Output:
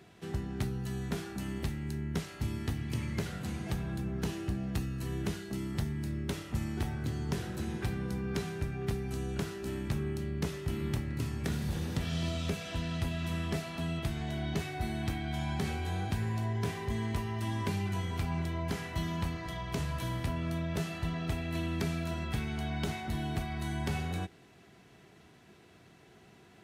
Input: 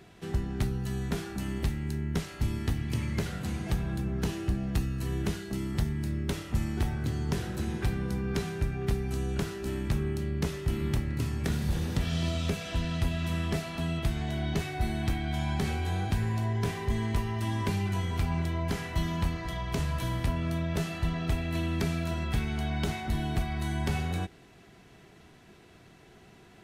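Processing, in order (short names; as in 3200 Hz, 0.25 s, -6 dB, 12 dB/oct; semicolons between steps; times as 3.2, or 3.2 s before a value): HPF 70 Hz; gain -3 dB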